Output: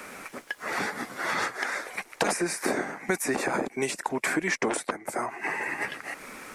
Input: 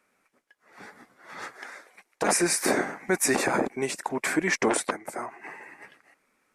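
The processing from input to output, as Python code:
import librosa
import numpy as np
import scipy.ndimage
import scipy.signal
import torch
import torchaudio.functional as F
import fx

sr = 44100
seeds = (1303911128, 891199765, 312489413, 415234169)

y = fx.band_squash(x, sr, depth_pct=100)
y = y * librosa.db_to_amplitude(-2.0)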